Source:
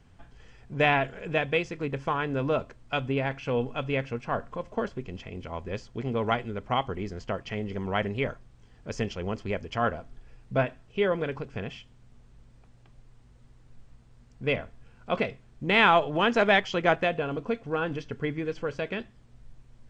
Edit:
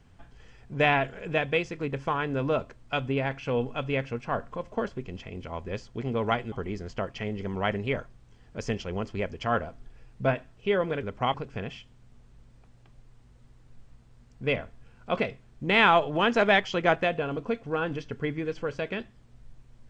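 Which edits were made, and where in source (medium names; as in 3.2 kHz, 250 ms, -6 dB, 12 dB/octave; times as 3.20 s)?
6.52–6.83 s: move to 11.34 s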